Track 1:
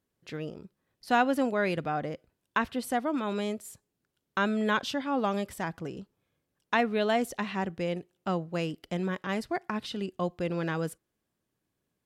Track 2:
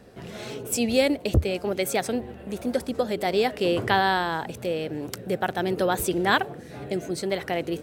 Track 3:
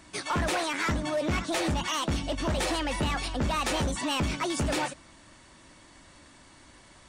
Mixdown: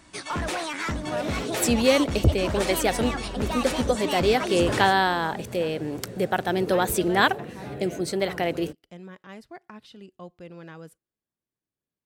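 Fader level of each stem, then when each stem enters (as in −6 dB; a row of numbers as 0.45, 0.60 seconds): −11.5, +1.5, −1.0 decibels; 0.00, 0.90, 0.00 seconds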